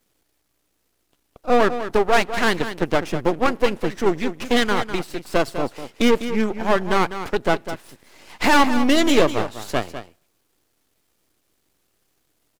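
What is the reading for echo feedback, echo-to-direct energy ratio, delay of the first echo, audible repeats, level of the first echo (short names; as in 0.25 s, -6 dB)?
no steady repeat, -11.0 dB, 0.201 s, 1, -11.0 dB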